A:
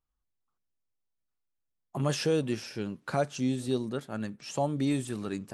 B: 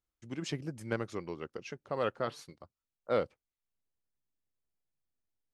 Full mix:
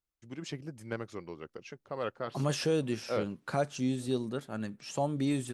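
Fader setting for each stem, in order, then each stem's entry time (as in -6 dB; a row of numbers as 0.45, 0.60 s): -2.0, -3.0 dB; 0.40, 0.00 s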